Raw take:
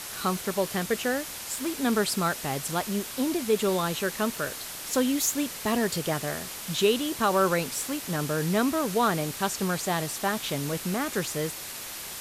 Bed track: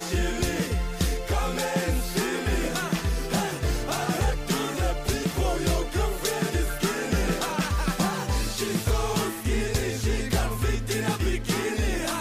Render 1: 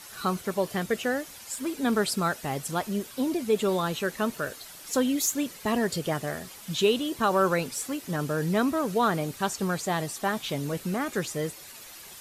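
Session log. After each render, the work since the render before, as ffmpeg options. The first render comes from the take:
ffmpeg -i in.wav -af "afftdn=noise_reduction=10:noise_floor=-38" out.wav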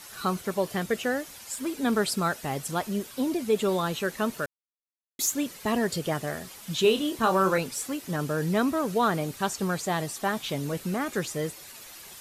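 ffmpeg -i in.wav -filter_complex "[0:a]asettb=1/sr,asplit=3[link_01][link_02][link_03];[link_01]atrim=end=6.824[link_04];[link_02]atrim=start=6.82:end=7.58,asetpts=PTS-STARTPTS,afade=type=in:duration=0.004:curve=qsin,afade=type=out:start_time=0.756:duration=0.004:curve=qsin,asplit=2[link_05][link_06];[link_06]adelay=27,volume=-7dB[link_07];[link_05][link_07]amix=inputs=2:normalize=0,atrim=end_sample=33516[link_08];[link_03]atrim=start=7.576[link_09];[link_04][link_08]acrossfade=duration=0.004:curve1=hsin:curve2=qsin[link_10];[link_10][link_09]acrossfade=duration=0.004:curve1=qsin:curve2=hsin,asplit=3[link_11][link_12][link_13];[link_11]atrim=end=4.46,asetpts=PTS-STARTPTS,afade=type=out:start_time=4.456:duration=0.004:curve=hsin[link_14];[link_12]atrim=start=4.46:end=5.19,asetpts=PTS-STARTPTS,volume=0[link_15];[link_13]atrim=start=5.19,asetpts=PTS-STARTPTS,afade=type=in:duration=0.004:curve=hsin[link_16];[link_14][link_15][link_16]concat=n=3:v=0:a=1" out.wav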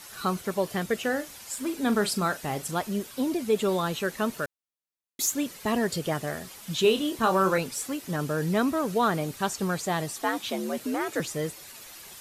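ffmpeg -i in.wav -filter_complex "[0:a]asettb=1/sr,asplit=3[link_01][link_02][link_03];[link_01]atrim=end=1.014[link_04];[link_02]atrim=start=1.01:end=2.71,asetpts=PTS-STARTPTS,afade=type=in:duration=0.004:curve=qsin,afade=type=out:start_time=1.696:duration=0.004:curve=qsin,asplit=2[link_05][link_06];[link_06]adelay=39,volume=-12.5dB[link_07];[link_05][link_07]amix=inputs=2:normalize=0,atrim=end_sample=74970[link_08];[link_03]atrim=start=2.706[link_09];[link_04][link_08]acrossfade=duration=0.004:curve1=hsin:curve2=qsin[link_10];[link_10][link_09]acrossfade=duration=0.004:curve1=qsin:curve2=hsin,asettb=1/sr,asplit=3[link_11][link_12][link_13];[link_11]atrim=end=10.224[link_14];[link_12]atrim=start=10.22:end=11.2,asetpts=PTS-STARTPTS,afade=type=in:duration=0.004:curve=qsin,afade=type=out:start_time=0.976:duration=0.004:curve=qsin,afreqshift=74[link_15];[link_13]atrim=start=11.196[link_16];[link_14][link_15]acrossfade=duration=0.004:curve1=hsin:curve2=qsin[link_17];[link_17][link_16]acrossfade=duration=0.004:curve1=qsin:curve2=hsin" out.wav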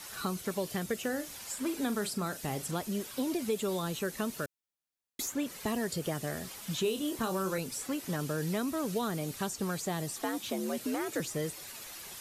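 ffmpeg -i in.wav -filter_complex "[0:a]acrossover=split=460|2300|5400[link_01][link_02][link_03][link_04];[link_01]acompressor=threshold=-33dB:ratio=4[link_05];[link_02]acompressor=threshold=-39dB:ratio=4[link_06];[link_03]acompressor=threshold=-48dB:ratio=4[link_07];[link_04]acompressor=threshold=-39dB:ratio=4[link_08];[link_05][link_06][link_07][link_08]amix=inputs=4:normalize=0" out.wav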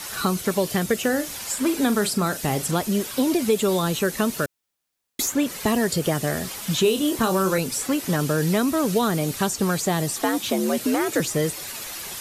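ffmpeg -i in.wav -af "volume=11.5dB" out.wav

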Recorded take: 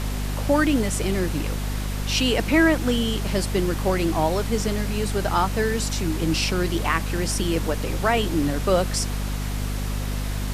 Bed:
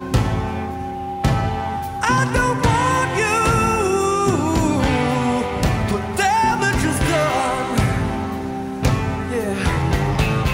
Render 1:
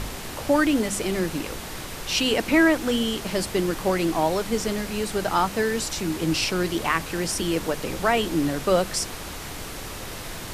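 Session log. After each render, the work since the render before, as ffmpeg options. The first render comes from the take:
ffmpeg -i in.wav -af "bandreject=frequency=50:width_type=h:width=6,bandreject=frequency=100:width_type=h:width=6,bandreject=frequency=150:width_type=h:width=6,bandreject=frequency=200:width_type=h:width=6,bandreject=frequency=250:width_type=h:width=6" out.wav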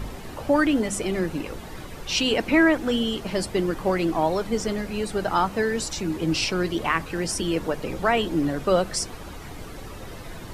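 ffmpeg -i in.wav -af "afftdn=noise_reduction=11:noise_floor=-36" out.wav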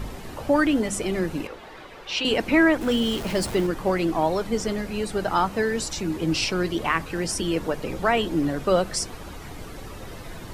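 ffmpeg -i in.wav -filter_complex "[0:a]asettb=1/sr,asplit=3[link_01][link_02][link_03];[link_01]atrim=end=1.474[link_04];[link_02]atrim=start=1.47:end=2.25,asetpts=PTS-STARTPTS,afade=type=in:duration=0.004:curve=qsin,afade=type=out:start_time=0.776:duration=0.004:curve=qsin,acrossover=split=350 4400:gain=0.2 1 0.2[link_05][link_06][link_07];[link_05][link_06][link_07]amix=inputs=3:normalize=0[link_08];[link_03]atrim=start=2.246[link_09];[link_04][link_08]acrossfade=duration=0.004:curve1=hsin:curve2=qsin[link_10];[link_10][link_09]acrossfade=duration=0.004:curve1=qsin:curve2=hsin,asettb=1/sr,asplit=3[link_11][link_12][link_13];[link_11]atrim=end=2.814[link_14];[link_12]atrim=start=2.81:end=3.67,asetpts=PTS-STARTPTS,afade=type=in:duration=0.004:curve=qsin,afade=type=out:start_time=0.856:duration=0.004:curve=qsin,aeval=exprs='val(0)+0.5*0.0266*sgn(val(0))':channel_layout=same[link_15];[link_13]atrim=start=3.666[link_16];[link_14][link_15]acrossfade=duration=0.004:curve1=hsin:curve2=qsin[link_17];[link_17][link_16]acrossfade=duration=0.004:curve1=qsin:curve2=hsin" out.wav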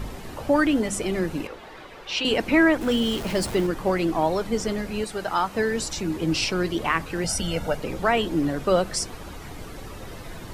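ffmpeg -i in.wav -filter_complex "[0:a]asettb=1/sr,asplit=3[link_01][link_02][link_03];[link_01]atrim=end=5.044[link_04];[link_02]atrim=start=5.04:end=5.55,asetpts=PTS-STARTPTS,afade=type=in:duration=0.004:curve=qsin,afade=type=out:start_time=0.506:duration=0.004:curve=qsin,lowshelf=frequency=460:gain=-8[link_05];[link_03]atrim=start=5.546[link_06];[link_04][link_05]acrossfade=duration=0.004:curve1=hsin:curve2=qsin[link_07];[link_07][link_06]acrossfade=duration=0.004:curve1=qsin:curve2=hsin,asettb=1/sr,asplit=3[link_08][link_09][link_10];[link_08]atrim=end=7.244[link_11];[link_09]atrim=start=7.24:end=7.77,asetpts=PTS-STARTPTS,afade=type=in:duration=0.004:curve=qsin,afade=type=out:start_time=0.526:duration=0.004:curve=qsin,aecho=1:1:1.4:0.74,atrim=end_sample=23373[link_12];[link_10]atrim=start=7.766[link_13];[link_11][link_12]acrossfade=duration=0.004:curve1=hsin:curve2=qsin[link_14];[link_14][link_13]acrossfade=duration=0.004:curve1=qsin:curve2=hsin" out.wav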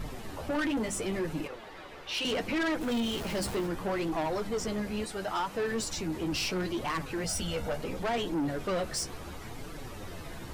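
ffmpeg -i in.wav -af "flanger=delay=5.9:depth=9.4:regen=28:speed=0.72:shape=triangular,asoftclip=type=tanh:threshold=-26.5dB" out.wav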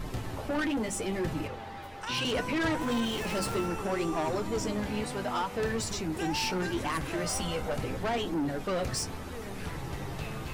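ffmpeg -i in.wav -i bed.wav -filter_complex "[1:a]volume=-20dB[link_01];[0:a][link_01]amix=inputs=2:normalize=0" out.wav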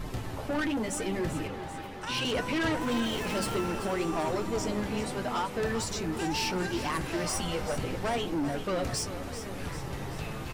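ffmpeg -i in.wav -af "aecho=1:1:389|778|1167|1556|1945|2334:0.266|0.152|0.0864|0.0493|0.0281|0.016" out.wav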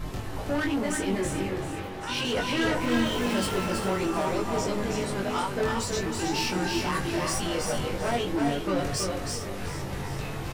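ffmpeg -i in.wav -filter_complex "[0:a]asplit=2[link_01][link_02];[link_02]adelay=21,volume=-3dB[link_03];[link_01][link_03]amix=inputs=2:normalize=0,aecho=1:1:324:0.631" out.wav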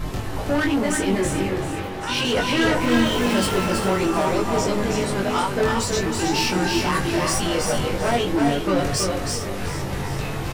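ffmpeg -i in.wav -af "volume=6.5dB" out.wav

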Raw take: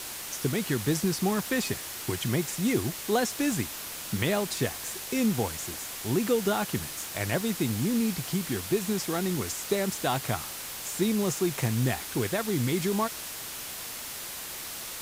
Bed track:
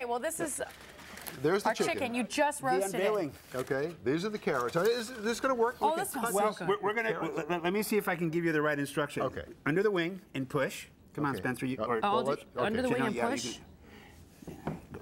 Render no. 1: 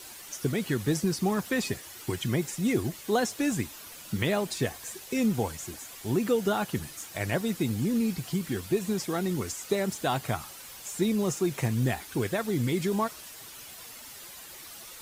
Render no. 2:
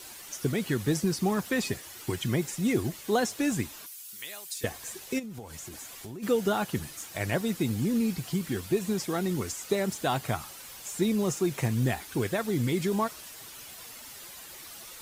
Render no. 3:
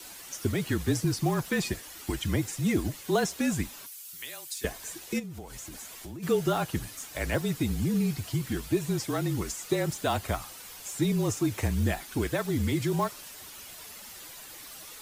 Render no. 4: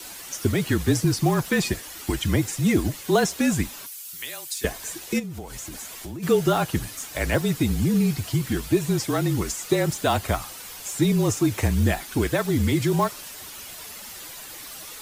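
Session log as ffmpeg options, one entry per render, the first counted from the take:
ffmpeg -i in.wav -af "afftdn=noise_reduction=10:noise_floor=-39" out.wav
ffmpeg -i in.wav -filter_complex "[0:a]asettb=1/sr,asplit=3[link_01][link_02][link_03];[link_01]atrim=end=3.864[link_04];[link_02]atrim=start=3.86:end=4.64,asetpts=PTS-STARTPTS,afade=type=in:duration=0.004:curve=qsin,afade=type=out:start_time=0.776:duration=0.004:curve=qsin,aderivative[link_05];[link_03]atrim=start=4.636[link_06];[link_04][link_05]acrossfade=duration=0.004:curve1=hsin:curve2=qsin[link_07];[link_07][link_06]acrossfade=duration=0.004:curve1=qsin:curve2=hsin,asplit=3[link_08][link_09][link_10];[link_08]afade=type=out:start_time=5.18:duration=0.02[link_11];[link_09]acompressor=threshold=-37dB:ratio=10:attack=3.2:release=140:knee=1:detection=peak,afade=type=in:start_time=5.18:duration=0.02,afade=type=out:start_time=6.22:duration=0.02[link_12];[link_10]afade=type=in:start_time=6.22:duration=0.02[link_13];[link_11][link_12][link_13]amix=inputs=3:normalize=0" out.wav
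ffmpeg -i in.wav -filter_complex "[0:a]afreqshift=-36,acrossover=split=720|1800[link_01][link_02][link_03];[link_02]acrusher=bits=4:mode=log:mix=0:aa=0.000001[link_04];[link_01][link_04][link_03]amix=inputs=3:normalize=0" out.wav
ffmpeg -i in.wav -af "volume=6dB" out.wav

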